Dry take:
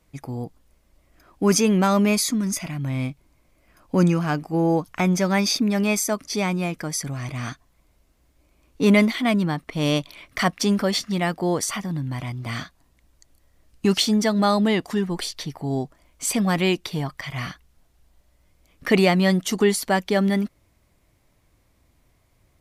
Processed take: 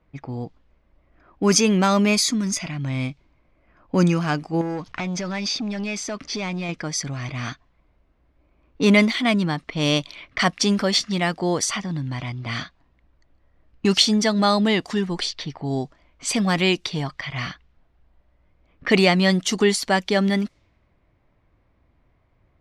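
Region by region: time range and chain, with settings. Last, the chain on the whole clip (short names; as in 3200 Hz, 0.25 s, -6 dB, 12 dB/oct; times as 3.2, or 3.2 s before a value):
4.61–6.69 compressor 4:1, threshold -32 dBFS + sample leveller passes 2
whole clip: low-pass opened by the level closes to 1600 Hz, open at -20 dBFS; LPF 5800 Hz 12 dB/oct; high shelf 2800 Hz +9 dB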